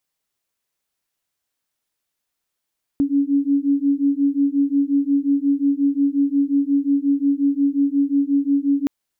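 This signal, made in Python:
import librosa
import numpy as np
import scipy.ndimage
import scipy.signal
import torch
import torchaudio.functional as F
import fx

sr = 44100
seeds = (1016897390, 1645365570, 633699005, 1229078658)

y = fx.two_tone_beats(sr, length_s=5.87, hz=278.0, beat_hz=5.6, level_db=-18.5)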